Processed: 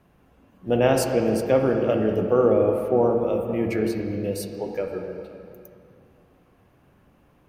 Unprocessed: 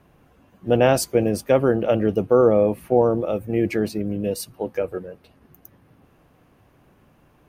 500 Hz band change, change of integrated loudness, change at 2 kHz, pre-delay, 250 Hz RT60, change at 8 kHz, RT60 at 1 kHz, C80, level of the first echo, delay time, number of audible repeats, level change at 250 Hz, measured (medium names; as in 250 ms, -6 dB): -2.0 dB, -2.0 dB, -2.0 dB, 5 ms, 2.4 s, -4.0 dB, 2.4 s, 5.0 dB, no echo, no echo, no echo, -1.5 dB